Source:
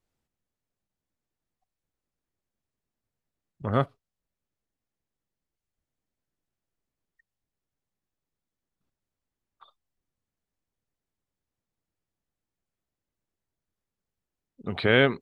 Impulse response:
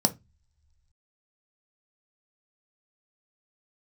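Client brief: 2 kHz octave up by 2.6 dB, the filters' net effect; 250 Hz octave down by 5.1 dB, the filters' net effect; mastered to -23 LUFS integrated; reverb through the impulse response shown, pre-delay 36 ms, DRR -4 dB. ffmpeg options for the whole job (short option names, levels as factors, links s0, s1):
-filter_complex "[0:a]equalizer=f=250:t=o:g=-6.5,equalizer=f=2000:t=o:g=3.5,asplit=2[s0][s1];[1:a]atrim=start_sample=2205,adelay=36[s2];[s1][s2]afir=irnorm=-1:irlink=0,volume=0.501[s3];[s0][s3]amix=inputs=2:normalize=0,volume=0.631"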